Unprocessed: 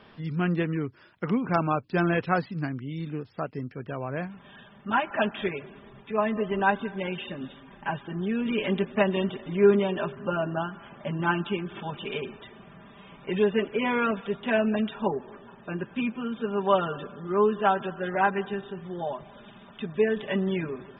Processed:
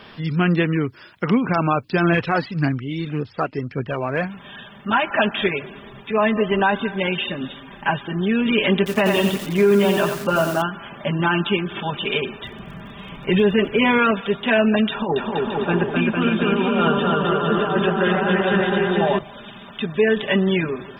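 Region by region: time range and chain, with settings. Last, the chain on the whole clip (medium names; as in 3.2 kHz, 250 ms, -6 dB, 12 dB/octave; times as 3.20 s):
2.12–4.24 s: phaser 1.8 Hz, delay 3.6 ms, feedback 43% + distance through air 73 m
8.77–10.62 s: distance through air 57 m + bit-crushed delay 89 ms, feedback 35%, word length 7-bit, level -6 dB
12.42–13.98 s: bass shelf 160 Hz +11 dB + crackle 41 per s -54 dBFS
14.90–19.19 s: compressor with a negative ratio -30 dBFS + distance through air 64 m + bouncing-ball echo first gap 260 ms, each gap 0.75×, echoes 5, each echo -2 dB
whole clip: treble shelf 2.1 kHz +8 dB; loudness maximiser +15 dB; trim -7 dB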